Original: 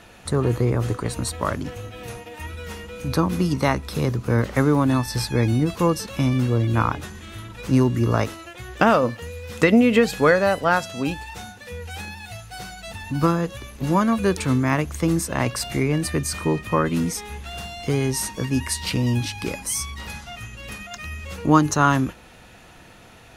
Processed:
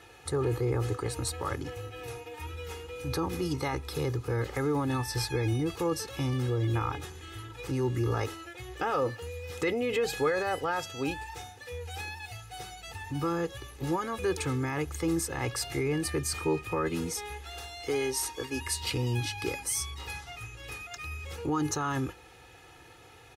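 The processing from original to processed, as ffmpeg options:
-filter_complex "[0:a]asettb=1/sr,asplit=3[a][b][c];[a]atrim=end=17.324[d];[b]atrim=start=17.32:end=18.66,asetpts=PTS-STARTPTS,afade=t=in:d=0.004:c=qsin,afade=t=out:st=1.336:d=0.004:c=qsin,equalizer=f=140:w=1.5:g=-15[e];[c]atrim=start=18.656[f];[d][e]acrossfade=d=0.004:c1=hsin:c2=qsin[g];[g][f]acrossfade=d=0.004:c1=qsin:c2=hsin,alimiter=limit=-14dB:level=0:latency=1:release=12,highpass=66,aecho=1:1:2.4:0.83,volume=-7.5dB"

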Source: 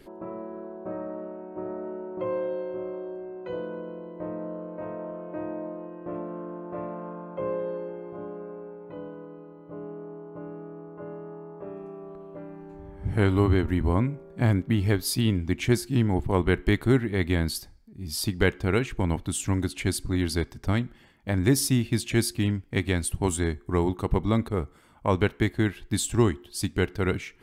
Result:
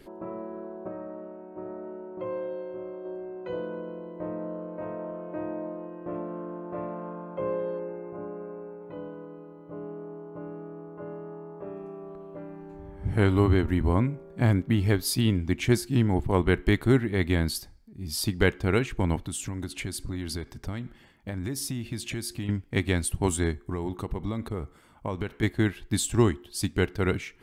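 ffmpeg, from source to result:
-filter_complex "[0:a]asettb=1/sr,asplit=3[a][b][c];[a]atrim=end=7.794[d];[b]atrim=start=7.79:end=8.82,asetpts=PTS-STARTPTS,afade=t=in:d=0.004:c=qsin,afade=t=out:st=1.026:d=0.004:c=qsin,asuperstop=centerf=4000:order=20:qfactor=1.5[e];[c]atrim=start=8.816[f];[d][e]acrossfade=d=0.004:c1=hsin:c2=qsin[g];[g][f]acrossfade=d=0.004:c1=qsin:c2=hsin,asettb=1/sr,asplit=3[h][i][j];[h]atrim=end=19.274[k];[i]atrim=start=19.27:end=22.49,asetpts=PTS-STARTPTS,afade=t=in:d=0.004:c=qsin,afade=t=out:st=3.216:d=0.004:c=qsin,acompressor=threshold=-29dB:ratio=5:attack=3.2:release=140:knee=1:detection=peak[l];[j]atrim=start=22.486[m];[k][l]acrossfade=d=0.004:c1=hsin:c2=qsin[n];[n][m]acrossfade=d=0.004:c1=qsin:c2=hsin,asettb=1/sr,asplit=3[o][p][q];[o]atrim=end=23.514[r];[p]atrim=start=23.51:end=25.43,asetpts=PTS-STARTPTS,afade=t=in:d=0.004:c=qsin,afade=t=out:st=1.916:d=0.004:c=qsin,acompressor=threshold=-26dB:ratio=6:attack=3.2:release=140:knee=1:detection=peak[s];[q]atrim=start=25.426[t];[r][s]acrossfade=d=0.004:c1=hsin:c2=qsin[u];[u][t]acrossfade=d=0.004:c1=qsin:c2=hsin,asplit=3[v][w][x];[v]atrim=end=0.882[y];[w]atrim=start=0.878:end=3.052,asetpts=PTS-STARTPTS,volume=-4dB[z];[x]atrim=start=3.048[aa];[y][z]acrossfade=d=0.004:c1=hsin:c2=hsin[ab];[ab][aa]acrossfade=d=0.004:c1=hsin:c2=hsin"

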